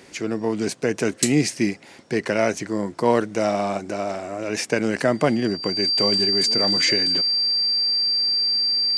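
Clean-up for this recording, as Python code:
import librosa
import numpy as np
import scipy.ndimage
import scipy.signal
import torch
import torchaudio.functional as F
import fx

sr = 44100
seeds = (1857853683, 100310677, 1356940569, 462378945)

y = fx.fix_declip(x, sr, threshold_db=-5.5)
y = fx.notch(y, sr, hz=4700.0, q=30.0)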